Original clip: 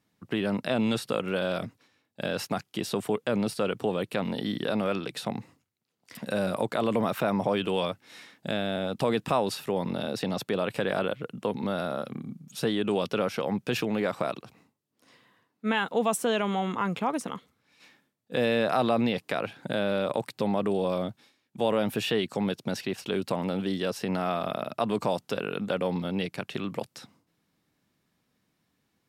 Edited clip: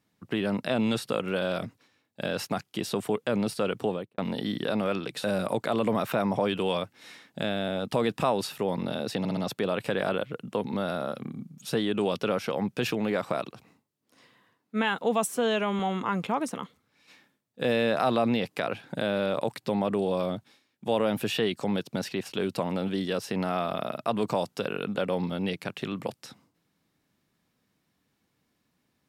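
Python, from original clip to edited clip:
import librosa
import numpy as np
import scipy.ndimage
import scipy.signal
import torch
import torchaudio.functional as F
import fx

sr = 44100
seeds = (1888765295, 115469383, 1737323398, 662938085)

y = fx.studio_fade_out(x, sr, start_s=3.85, length_s=0.33)
y = fx.edit(y, sr, fx.cut(start_s=5.24, length_s=1.08),
    fx.stutter(start_s=10.27, slice_s=0.06, count=4),
    fx.stretch_span(start_s=16.17, length_s=0.35, factor=1.5), tone=tone)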